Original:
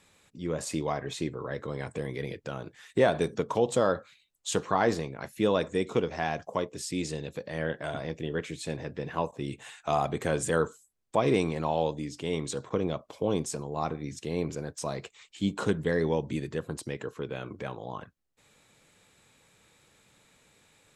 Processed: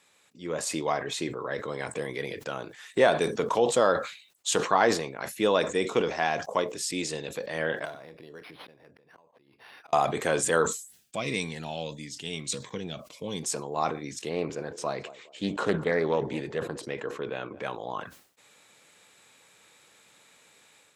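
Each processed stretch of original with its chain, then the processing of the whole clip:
0:07.85–0:09.93: downward compressor 4 to 1, threshold −45 dBFS + volume swells 473 ms + linearly interpolated sample-rate reduction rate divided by 6×
0:10.66–0:13.43: flat-topped bell 640 Hz −9.5 dB 2.6 octaves + phaser whose notches keep moving one way falling 1.6 Hz
0:14.29–0:17.63: low-pass filter 3,000 Hz 6 dB per octave + feedback echo with a band-pass in the loop 206 ms, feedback 48%, band-pass 480 Hz, level −18 dB + highs frequency-modulated by the lows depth 0.22 ms
whole clip: automatic gain control gain up to 5.5 dB; high-pass filter 520 Hz 6 dB per octave; level that may fall only so fast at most 110 dB per second

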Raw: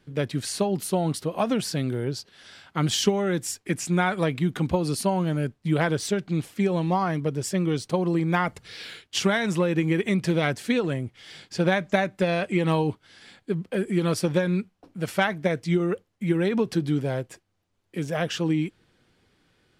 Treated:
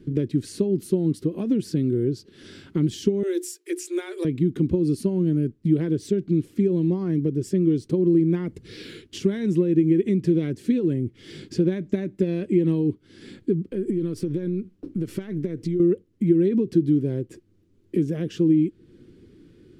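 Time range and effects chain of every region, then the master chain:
0:03.23–0:04.25: Butterworth high-pass 330 Hz 96 dB per octave + spectral tilt +3 dB per octave + mains-hum notches 60/120/180/240/300/360/420 Hz
0:13.71–0:15.80: gain on one half-wave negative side −3 dB + downward compressor, threshold −32 dBFS
whole clip: dynamic equaliser 1,300 Hz, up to −5 dB, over −44 dBFS, Q 3.6; downward compressor 2.5 to 1, threshold −41 dBFS; low shelf with overshoot 510 Hz +13 dB, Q 3

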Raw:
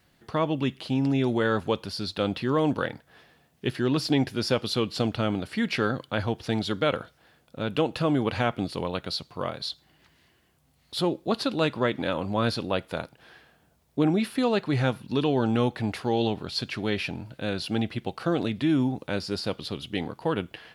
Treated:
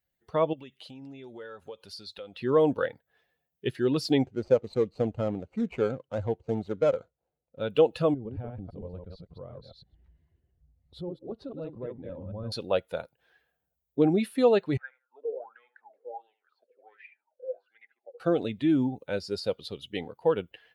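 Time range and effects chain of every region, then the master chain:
0:00.53–0:02.39: low-shelf EQ 490 Hz −6 dB + downward compressor 10 to 1, threshold −32 dBFS
0:04.26–0:07.59: running median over 25 samples + low-pass filter 7,300 Hz
0:08.14–0:12.52: delay that plays each chunk backwards 113 ms, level −3 dB + spectral tilt −4 dB per octave + downward compressor 2 to 1, threshold −41 dBFS
0:14.77–0:18.20: high-pass filter 240 Hz 24 dB per octave + tape delay 75 ms, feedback 31%, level −6.5 dB, low-pass 2,700 Hz + LFO wah 1.4 Hz 480–2,100 Hz, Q 10
whole clip: spectral dynamics exaggerated over time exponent 1.5; parametric band 500 Hz +10 dB 0.77 octaves; level −1.5 dB

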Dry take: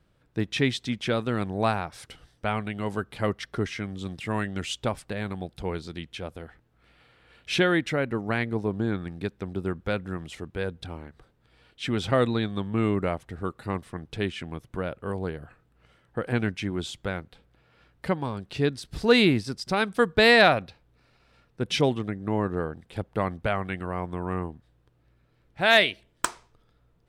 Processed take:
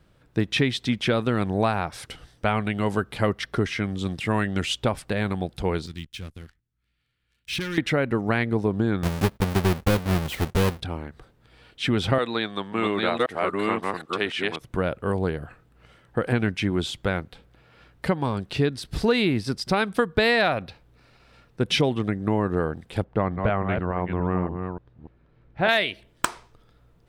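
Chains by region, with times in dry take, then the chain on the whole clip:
0:05.86–0:07.78: leveller curve on the samples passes 3 + guitar amp tone stack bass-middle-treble 6-0-2
0:09.03–0:10.81: each half-wave held at its own peak + noise gate −50 dBFS, range −20 dB
0:12.18–0:14.61: delay that plays each chunk backwards 541 ms, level −1 dB + meter weighting curve A
0:23.04–0:25.69: delay that plays each chunk backwards 290 ms, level −7 dB + de-essing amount 35% + head-to-tape spacing loss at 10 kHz 25 dB
whole clip: dynamic equaliser 7,000 Hz, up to −5 dB, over −49 dBFS, Q 1.4; downward compressor 6 to 1, threshold −24 dBFS; level +6.5 dB

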